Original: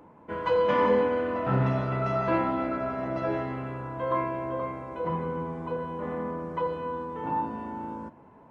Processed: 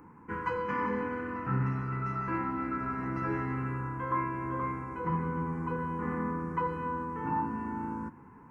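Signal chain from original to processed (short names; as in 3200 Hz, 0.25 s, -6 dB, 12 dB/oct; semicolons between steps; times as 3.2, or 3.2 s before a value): fixed phaser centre 1500 Hz, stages 4; vocal rider within 4 dB 0.5 s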